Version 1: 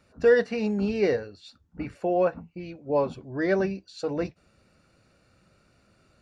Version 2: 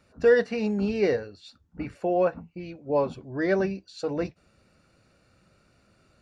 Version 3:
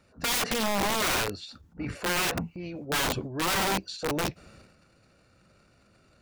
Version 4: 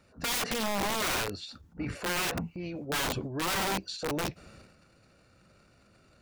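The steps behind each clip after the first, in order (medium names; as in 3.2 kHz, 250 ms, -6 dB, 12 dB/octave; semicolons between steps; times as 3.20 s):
no audible change
transient shaper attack -3 dB, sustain +11 dB; integer overflow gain 22 dB
peak limiter -25.5 dBFS, peak gain reduction 3.5 dB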